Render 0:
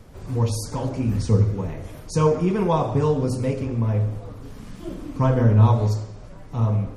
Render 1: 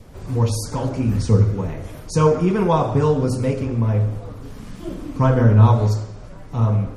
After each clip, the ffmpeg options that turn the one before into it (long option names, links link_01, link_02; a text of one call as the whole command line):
ffmpeg -i in.wav -af "adynamicequalizer=threshold=0.00562:dfrequency=1400:dqfactor=4.4:tfrequency=1400:tqfactor=4.4:attack=5:release=100:ratio=0.375:range=2.5:mode=boostabove:tftype=bell,volume=3dB" out.wav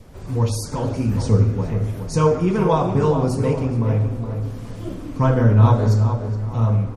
ffmpeg -i in.wav -filter_complex "[0:a]asplit=2[link_01][link_02];[link_02]adelay=418,lowpass=frequency=1700:poles=1,volume=-7dB,asplit=2[link_03][link_04];[link_04]adelay=418,lowpass=frequency=1700:poles=1,volume=0.35,asplit=2[link_05][link_06];[link_06]adelay=418,lowpass=frequency=1700:poles=1,volume=0.35,asplit=2[link_07][link_08];[link_08]adelay=418,lowpass=frequency=1700:poles=1,volume=0.35[link_09];[link_01][link_03][link_05][link_07][link_09]amix=inputs=5:normalize=0,volume=-1dB" out.wav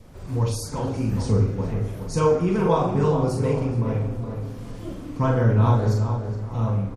ffmpeg -i in.wav -filter_complex "[0:a]asplit=2[link_01][link_02];[link_02]adelay=41,volume=-4.5dB[link_03];[link_01][link_03]amix=inputs=2:normalize=0,volume=-4dB" out.wav